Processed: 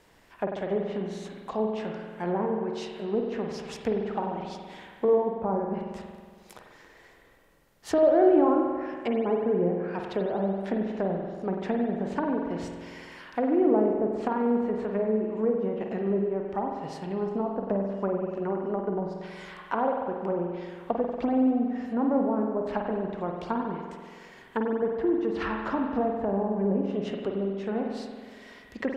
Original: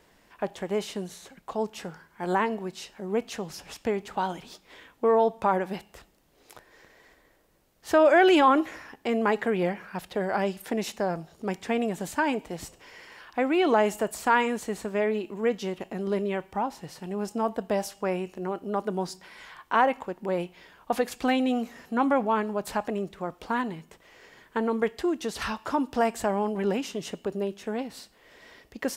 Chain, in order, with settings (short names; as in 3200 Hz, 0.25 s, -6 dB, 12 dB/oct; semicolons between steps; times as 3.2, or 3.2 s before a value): treble ducked by the level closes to 540 Hz, closed at -24 dBFS; spring tank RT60 1.7 s, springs 46 ms, chirp 45 ms, DRR 1.5 dB